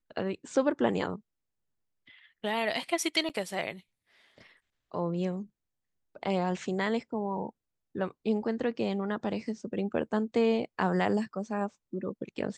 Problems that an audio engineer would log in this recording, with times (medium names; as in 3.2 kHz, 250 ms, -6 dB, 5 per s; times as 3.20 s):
3.29–3.30 s: dropout 7.5 ms